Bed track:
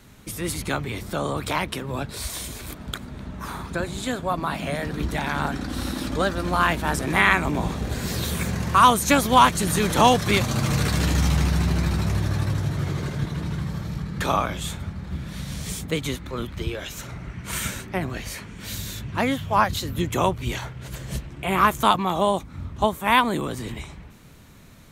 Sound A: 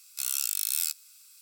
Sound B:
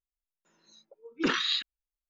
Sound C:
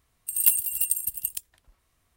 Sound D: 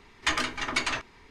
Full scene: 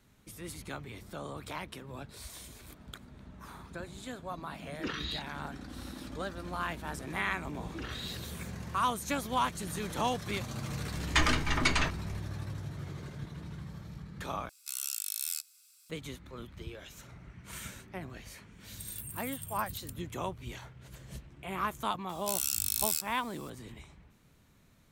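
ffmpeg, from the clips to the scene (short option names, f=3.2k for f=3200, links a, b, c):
-filter_complex "[2:a]asplit=2[a][b];[1:a]asplit=2[c][d];[0:a]volume=-15dB[e];[b]acompressor=threshold=-33dB:ratio=6:attack=3.2:release=140:knee=1:detection=peak[f];[4:a]lowshelf=f=240:g=10[g];[c]aresample=32000,aresample=44100[h];[3:a]acompressor=threshold=-34dB:ratio=6:attack=3.2:release=140:knee=1:detection=peak[i];[e]asplit=2[j][k];[j]atrim=end=14.494[l];[h]atrim=end=1.41,asetpts=PTS-STARTPTS,volume=-6.5dB[m];[k]atrim=start=15.896[n];[a]atrim=end=2.09,asetpts=PTS-STARTPTS,volume=-10dB,afade=t=in:d=0.004:c=hsin,afade=t=out:st=2.086:d=0.004:c=hsin,adelay=3600[o];[f]atrim=end=2.09,asetpts=PTS-STARTPTS,volume=-5.5dB,afade=t=in:d=0.004:c=hsin,afade=t=out:st=2.086:d=0.004:c=hsin,adelay=6550[p];[g]atrim=end=1.3,asetpts=PTS-STARTPTS,volume=-1dB,afade=t=in:d=0.004:c=hsin,afade=t=out:st=1.296:d=0.004:c=hsin,adelay=10890[q];[i]atrim=end=2.16,asetpts=PTS-STARTPTS,volume=-6.5dB,afade=t=in:d=0.004:c=hsin,afade=t=out:st=2.156:d=0.004:c=hsin,adelay=18520[r];[d]atrim=end=1.41,asetpts=PTS-STARTPTS,volume=-2.5dB,afade=t=in:d=0.004:c=hsin,afade=t=out:st=1.406:d=0.004:c=hsin,adelay=22090[s];[l][m]acrossfade=d=0.004:c1=hsin:c2=hsin[t];[t][n]acrossfade=d=0.004:c1=hsin:c2=hsin[u];[u][o][p][q][r][s]amix=inputs=6:normalize=0"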